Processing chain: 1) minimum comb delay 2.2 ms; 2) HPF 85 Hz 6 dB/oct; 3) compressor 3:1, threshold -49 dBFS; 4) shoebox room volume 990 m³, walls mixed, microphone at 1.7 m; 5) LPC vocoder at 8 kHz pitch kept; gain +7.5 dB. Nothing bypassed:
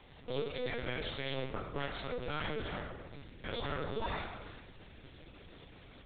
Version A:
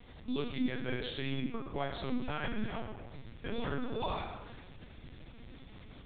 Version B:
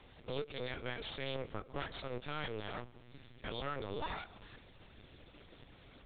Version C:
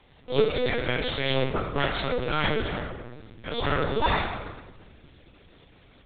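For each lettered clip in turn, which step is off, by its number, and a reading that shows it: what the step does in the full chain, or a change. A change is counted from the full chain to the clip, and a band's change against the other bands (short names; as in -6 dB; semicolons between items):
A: 1, 250 Hz band +9.0 dB; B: 4, loudness change -3.0 LU; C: 3, mean gain reduction 7.5 dB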